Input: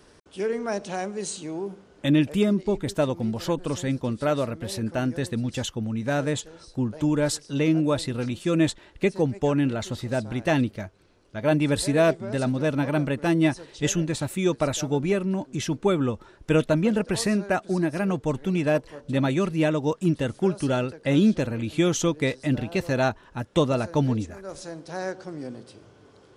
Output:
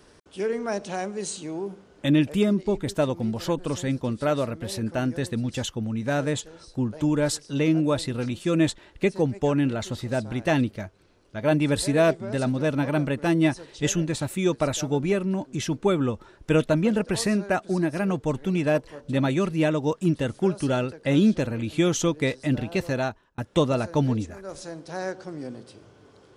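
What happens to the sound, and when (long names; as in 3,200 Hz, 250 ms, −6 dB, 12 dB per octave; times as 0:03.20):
0:22.83–0:23.38: fade out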